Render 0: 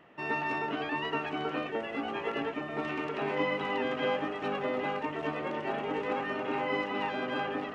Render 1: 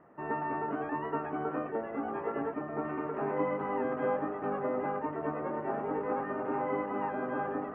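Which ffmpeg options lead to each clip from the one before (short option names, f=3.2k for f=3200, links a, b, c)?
-af "lowpass=f=1.5k:w=0.5412,lowpass=f=1.5k:w=1.3066"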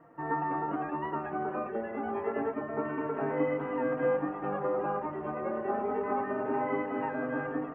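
-filter_complex "[0:a]asplit=2[a][b];[b]adelay=3.9,afreqshift=0.26[c];[a][c]amix=inputs=2:normalize=1,volume=4.5dB"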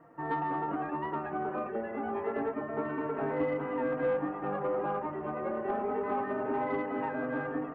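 -af "asoftclip=type=tanh:threshold=-21.5dB"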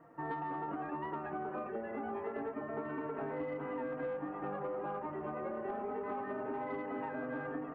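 -af "acompressor=threshold=-34dB:ratio=6,volume=-2dB"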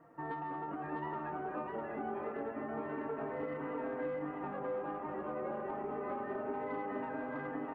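-af "aecho=1:1:652:0.668,volume=-1.5dB"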